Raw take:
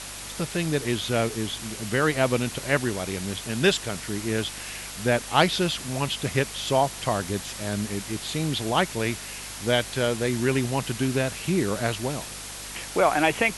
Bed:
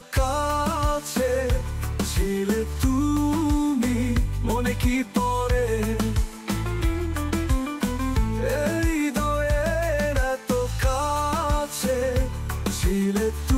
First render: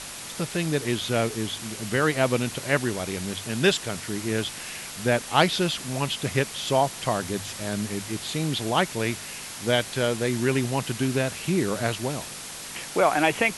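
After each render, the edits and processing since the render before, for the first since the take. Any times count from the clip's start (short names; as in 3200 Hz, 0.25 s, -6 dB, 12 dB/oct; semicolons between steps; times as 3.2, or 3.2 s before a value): de-hum 50 Hz, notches 2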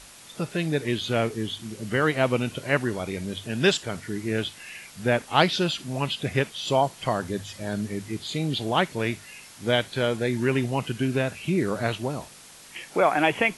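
noise print and reduce 10 dB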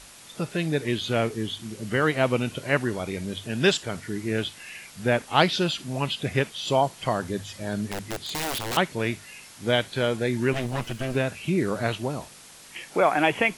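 7.87–8.77 wrapped overs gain 23.5 dB; 10.53–11.15 minimum comb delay 8.9 ms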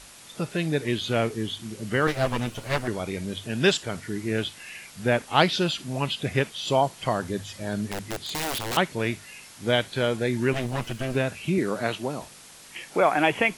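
2.07–2.88 minimum comb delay 9.1 ms; 11.58–12.22 HPF 160 Hz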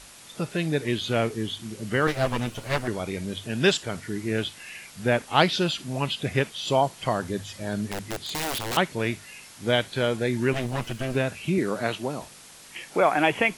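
nothing audible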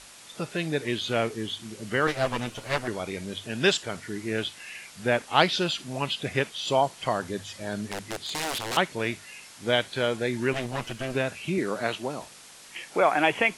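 LPF 11000 Hz 12 dB/oct; low shelf 250 Hz -7 dB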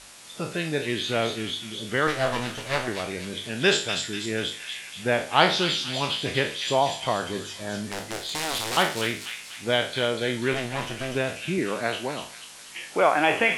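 spectral trails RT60 0.40 s; thin delay 0.244 s, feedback 50%, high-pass 2800 Hz, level -3 dB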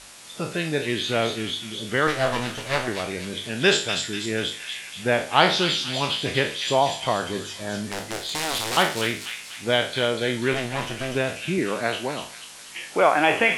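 gain +2 dB; limiter -2 dBFS, peak gain reduction 1.5 dB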